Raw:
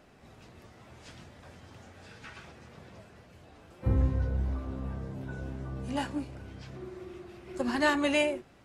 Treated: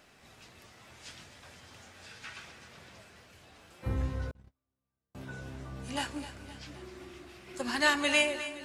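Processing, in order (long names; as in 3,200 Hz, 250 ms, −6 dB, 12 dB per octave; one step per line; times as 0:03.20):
tilt shelving filter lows −6.5 dB, about 1,200 Hz
echo with a time of its own for lows and highs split 330 Hz, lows 528 ms, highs 259 ms, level −13 dB
0:04.31–0:05.15: noise gate −31 dBFS, range −46 dB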